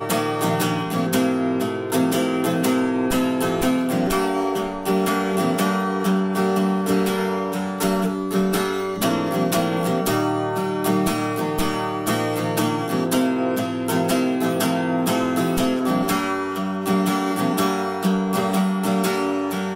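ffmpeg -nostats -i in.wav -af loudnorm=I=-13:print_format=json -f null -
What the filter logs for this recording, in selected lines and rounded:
"input_i" : "-21.5",
"input_tp" : "-8.7",
"input_lra" : "0.8",
"input_thresh" : "-31.5",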